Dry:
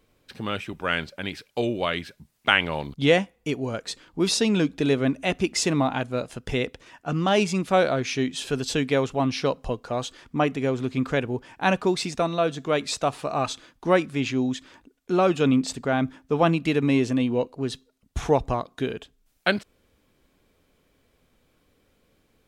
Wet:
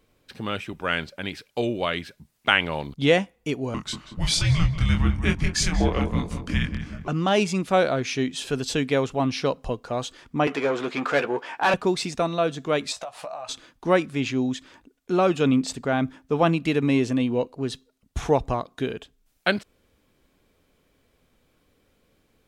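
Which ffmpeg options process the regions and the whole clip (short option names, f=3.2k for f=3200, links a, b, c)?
-filter_complex "[0:a]asettb=1/sr,asplit=3[a][b][c];[a]atrim=end=3.744[d];[b]atrim=start=3.74:end=7.08,asetpts=PTS-STARTPTS,afade=t=in:d=0.004:c=qsin,afade=t=out:st=3.336:d=0.004:c=qsin,asplit=2[e][f];[f]adelay=185,lowpass=f=1.5k:p=1,volume=-7dB,asplit=2[g][h];[h]adelay=185,lowpass=f=1.5k:p=1,volume=0.52,asplit=2[i][j];[j]adelay=185,lowpass=f=1.5k:p=1,volume=0.52,asplit=2[k][l];[l]adelay=185,lowpass=f=1.5k:p=1,volume=0.52,asplit=2[m][n];[n]adelay=185,lowpass=f=1.5k:p=1,volume=0.52,asplit=2[o][p];[p]adelay=185,lowpass=f=1.5k:p=1,volume=0.52[q];[e][g][i][k][m][o][q]amix=inputs=7:normalize=0,atrim=end_sample=147294,afreqshift=-340,asplit=2[r][s];[s]adelay=24,volume=-5dB[t];[r][t]amix=inputs=2:normalize=0,atrim=end_sample=147294[u];[c]atrim=start=7.076[v];[d][u]acrossfade=d=0.004:c1=hsin:c2=qsin[w];[w][v]acrossfade=d=0.004:c1=qsin:c2=hsin,asettb=1/sr,asplit=3[x][y][z];[x]atrim=end=10.474[aa];[y]atrim=start=10.47:end=11.74,asetpts=PTS-STARTPTS,afade=t=in:d=0.004:c=qsin,afade=t=out:st=1.266:d=0.004:c=qsin,asplit=2[ab][ac];[ac]highpass=f=720:p=1,volume=24dB,asoftclip=type=tanh:threshold=-7dB[ad];[ab][ad]amix=inputs=2:normalize=0,lowpass=f=1.2k:p=1,volume=-6dB,highpass=f=700:p=1,asplit=2[ae][af];[af]adelay=14,volume=-9dB[ag];[ae][ag]amix=inputs=2:normalize=0,atrim=end_sample=56007[ah];[z]atrim=start=11.736[ai];[aa][ah]acrossfade=d=0.004:c1=hsin:c2=qsin[aj];[aj][ai]acrossfade=d=0.004:c1=qsin:c2=hsin,asettb=1/sr,asplit=3[ak][al][am];[ak]atrim=end=12.924[an];[al]atrim=start=12.92:end=13.49,asetpts=PTS-STARTPTS,afade=t=in:d=0.004:c=qsin,afade=t=out:st=0.566:d=0.004:c=qsin,lowshelf=f=470:t=q:w=3:g=-9.5,acompressor=threshold=-31dB:ratio=16:attack=3.2:release=140:knee=1:detection=peak,asplit=2[ao][ap];[ap]adelay=17,volume=-9dB[aq];[ao][aq]amix=inputs=2:normalize=0,atrim=end_sample=25137[ar];[am]atrim=start=13.486[as];[an][ar]acrossfade=d=0.004:c1=hsin:c2=qsin[at];[at][as]acrossfade=d=0.004:c1=qsin:c2=hsin"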